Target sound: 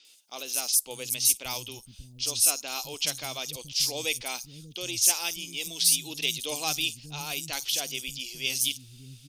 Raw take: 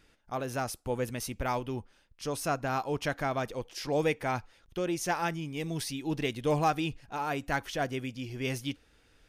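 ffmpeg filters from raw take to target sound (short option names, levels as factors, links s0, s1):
-filter_complex "[0:a]aexciter=amount=10.1:drive=8.9:freq=2700,acrossover=split=230|5500[s0][s1][s2];[s2]adelay=50[s3];[s0]adelay=590[s4];[s4][s1][s3]amix=inputs=3:normalize=0,volume=0.398"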